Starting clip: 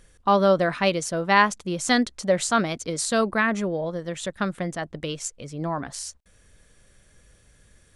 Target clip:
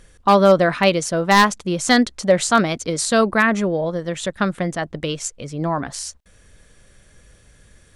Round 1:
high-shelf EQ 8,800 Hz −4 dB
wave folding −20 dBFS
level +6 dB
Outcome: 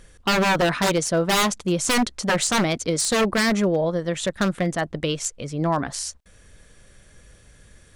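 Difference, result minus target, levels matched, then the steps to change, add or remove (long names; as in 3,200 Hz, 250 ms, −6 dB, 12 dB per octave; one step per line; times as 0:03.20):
wave folding: distortion +17 dB
change: wave folding −10.5 dBFS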